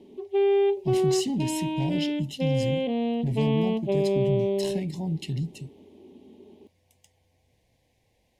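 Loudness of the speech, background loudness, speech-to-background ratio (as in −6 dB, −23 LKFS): −31.0 LKFS, −26.5 LKFS, −4.5 dB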